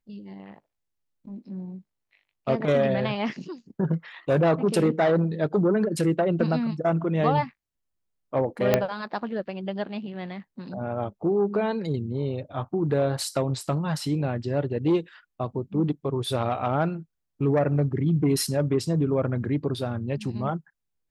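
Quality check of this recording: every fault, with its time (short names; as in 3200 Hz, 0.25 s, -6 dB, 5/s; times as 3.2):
8.74 pop -6 dBFS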